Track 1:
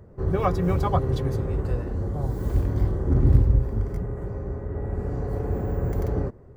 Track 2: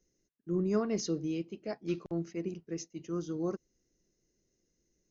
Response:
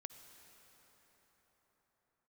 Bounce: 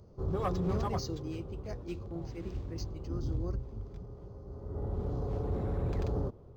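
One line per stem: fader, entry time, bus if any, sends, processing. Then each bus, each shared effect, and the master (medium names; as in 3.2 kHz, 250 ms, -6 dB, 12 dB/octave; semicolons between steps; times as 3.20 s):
0.84 s -8 dB -> 1.09 s -16.5 dB -> 4.45 s -16.5 dB -> 4.83 s -6 dB, 0.00 s, send -16.5 dB, high-order bell 2.1 kHz -15 dB 1 oct
-6.5 dB, 0.00 s, no send, none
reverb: on, pre-delay 48 ms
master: treble shelf 3.6 kHz +9.5 dB; saturation -24 dBFS, distortion -17 dB; decimation joined by straight lines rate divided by 4×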